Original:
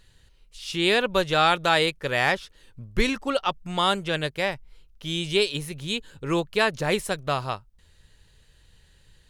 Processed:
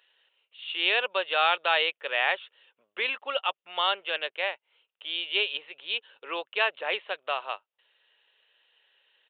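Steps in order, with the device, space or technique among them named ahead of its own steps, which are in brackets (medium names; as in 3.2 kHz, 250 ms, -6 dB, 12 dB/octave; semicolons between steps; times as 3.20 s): musical greeting card (resampled via 8 kHz; high-pass 510 Hz 24 dB/octave; peaking EQ 2.8 kHz +8 dB 0.38 oct); trim -4 dB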